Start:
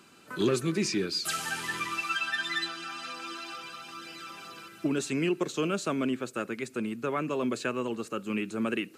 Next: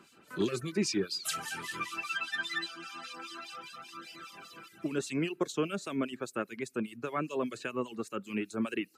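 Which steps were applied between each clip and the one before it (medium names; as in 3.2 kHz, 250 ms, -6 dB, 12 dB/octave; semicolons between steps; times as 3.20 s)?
harmonic tremolo 5 Hz, depth 70%, crossover 2.4 kHz; reverb removal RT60 0.62 s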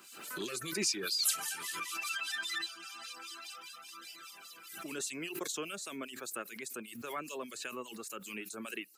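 RIAA curve recording; swell ahead of each attack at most 52 dB/s; trim -6.5 dB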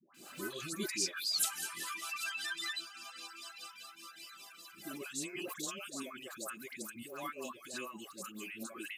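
comb of notches 460 Hz; phase dispersion highs, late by 146 ms, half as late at 800 Hz; trim -1 dB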